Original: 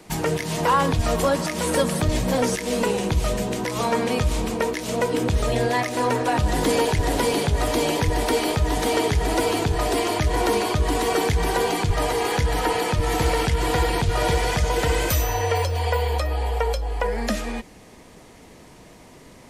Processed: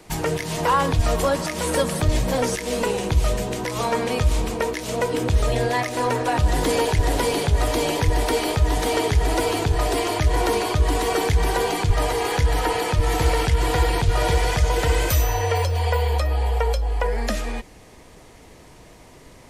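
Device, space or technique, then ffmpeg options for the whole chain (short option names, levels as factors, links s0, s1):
low shelf boost with a cut just above: -af "lowshelf=f=91:g=5.5,equalizer=f=210:t=o:w=0.79:g=-5"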